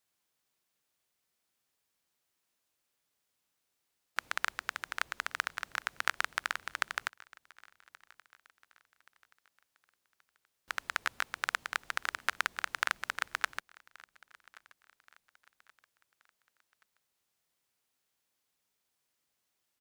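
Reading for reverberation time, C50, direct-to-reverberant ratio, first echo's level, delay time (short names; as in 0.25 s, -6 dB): none, none, none, -24.0 dB, 1.127 s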